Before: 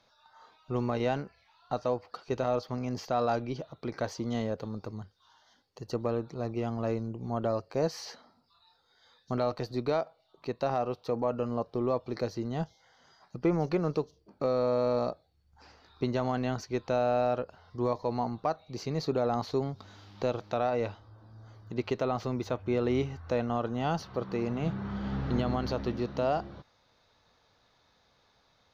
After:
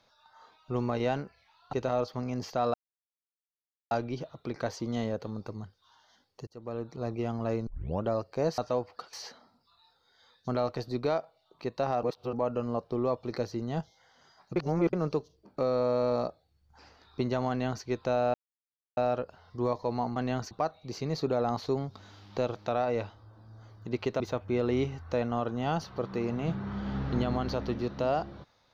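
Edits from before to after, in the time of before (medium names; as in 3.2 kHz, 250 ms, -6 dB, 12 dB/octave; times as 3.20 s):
1.73–2.28 s: move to 7.96 s
3.29 s: insert silence 1.17 s
5.85–6.37 s: fade in
7.05 s: tape start 0.36 s
10.86–11.16 s: reverse
13.39–13.76 s: reverse
16.32–16.67 s: copy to 18.36 s
17.17 s: insert silence 0.63 s
22.05–22.38 s: delete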